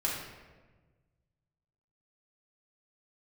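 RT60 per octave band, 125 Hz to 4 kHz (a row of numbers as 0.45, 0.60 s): 2.3, 1.7, 1.5, 1.2, 1.1, 0.85 s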